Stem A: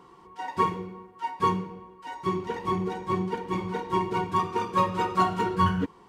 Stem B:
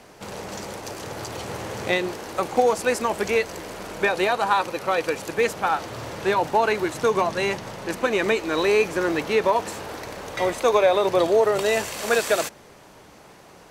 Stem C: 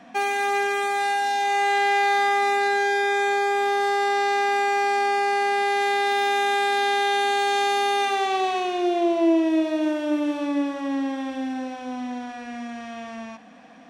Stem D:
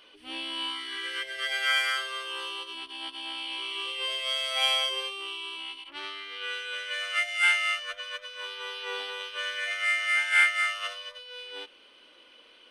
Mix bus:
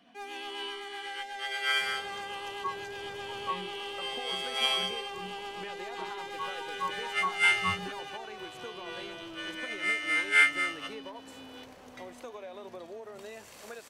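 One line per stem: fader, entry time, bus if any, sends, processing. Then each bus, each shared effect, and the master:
-12.0 dB, 2.05 s, no send, spectral contrast expander 2.5:1
-18.0 dB, 1.60 s, no send, compression, threshold -23 dBFS, peak gain reduction 9.5 dB
7.96 s -13 dB -> 8.47 s -20 dB, 0.00 s, no send, rotary cabinet horn 8 Hz; saturation -23.5 dBFS, distortion -12 dB
0.0 dB, 0.00 s, no send, upward expansion 1.5:1, over -43 dBFS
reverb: none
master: none

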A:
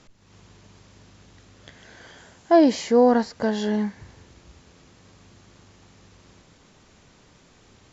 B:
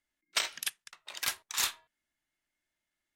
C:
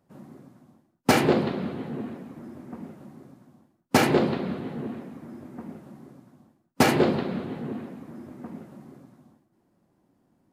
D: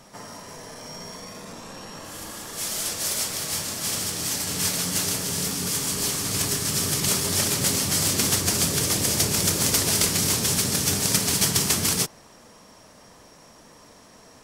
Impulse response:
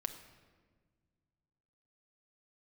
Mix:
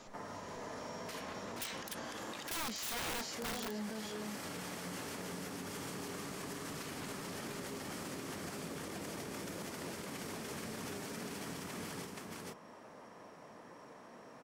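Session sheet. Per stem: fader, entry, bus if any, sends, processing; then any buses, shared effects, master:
-3.5 dB, 0.00 s, muted 3.90–5.63 s, no send, echo send -8 dB, treble shelf 3.2 kHz +11 dB; flange 0.81 Hz, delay 7 ms, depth 6.7 ms, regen +38%
+0.5 dB, 1.25 s, no send, no echo send, none
-18.0 dB, 0.00 s, no send, echo send -7 dB, spectral gate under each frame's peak -15 dB weak
-3.5 dB, 0.00 s, no send, echo send -4 dB, octave divider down 1 oct, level -2 dB; three-band isolator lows -21 dB, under 170 Hz, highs -15 dB, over 2.4 kHz; compression 6:1, threshold -37 dBFS, peak gain reduction 12 dB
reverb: none
echo: delay 474 ms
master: integer overflow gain 22.5 dB; peak limiter -34 dBFS, peak gain reduction 11.5 dB

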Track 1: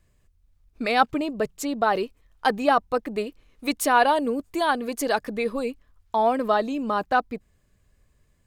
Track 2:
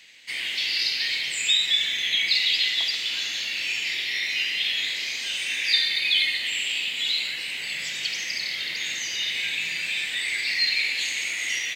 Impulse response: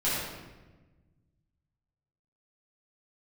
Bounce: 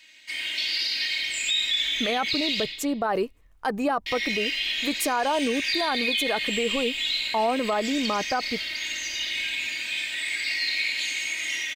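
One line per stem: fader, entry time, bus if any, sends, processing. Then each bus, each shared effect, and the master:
+1.5 dB, 1.20 s, no send, peaking EQ 3.6 kHz -6.5 dB
-5.5 dB, 0.00 s, muted 2.64–4.06 s, send -15 dB, comb 3.2 ms, depth 83%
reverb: on, RT60 1.2 s, pre-delay 6 ms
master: peak limiter -16 dBFS, peak gain reduction 12 dB

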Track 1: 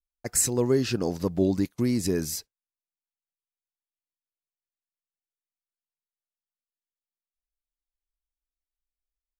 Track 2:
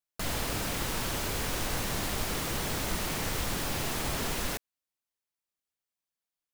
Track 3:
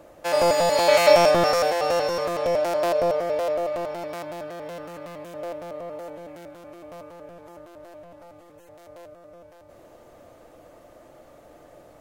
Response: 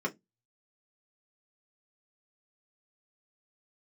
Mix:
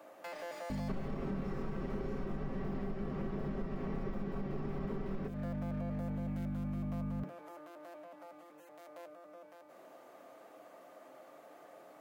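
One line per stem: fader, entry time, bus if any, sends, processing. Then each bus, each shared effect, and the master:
mute
-6.0 dB, 0.70 s, bus A, send -3 dB, tilt EQ -3.5 dB/octave; comb 5.2 ms, depth 65%; hum 50 Hz, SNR 11 dB
-1.0 dB, 0.00 s, bus A, send -17 dB, high-pass 160 Hz; compression 4:1, threshold -28 dBFS, peak gain reduction 15 dB; hard clipper -33.5 dBFS, distortion -7 dB
bus A: 0.0 dB, Bessel high-pass 950 Hz, order 8; compression, threshold -44 dBFS, peak gain reduction 8.5 dB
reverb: on, RT60 0.15 s, pre-delay 3 ms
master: peaking EQ 6.5 kHz -6 dB 2.8 oct; compression 12:1, threshold -34 dBFS, peak gain reduction 14.5 dB

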